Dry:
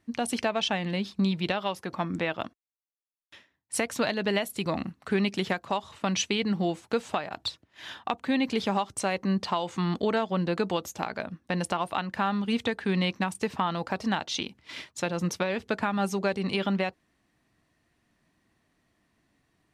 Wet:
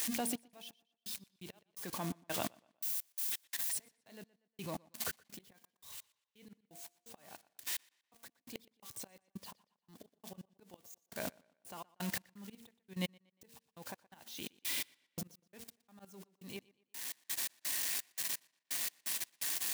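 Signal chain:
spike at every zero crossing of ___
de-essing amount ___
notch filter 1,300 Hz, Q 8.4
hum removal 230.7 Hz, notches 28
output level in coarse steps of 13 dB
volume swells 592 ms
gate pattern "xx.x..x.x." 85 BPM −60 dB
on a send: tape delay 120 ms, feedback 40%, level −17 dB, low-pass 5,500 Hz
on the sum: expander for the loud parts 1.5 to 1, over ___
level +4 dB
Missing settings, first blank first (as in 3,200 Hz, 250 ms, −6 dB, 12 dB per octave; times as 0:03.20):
−24 dBFS, 45%, −55 dBFS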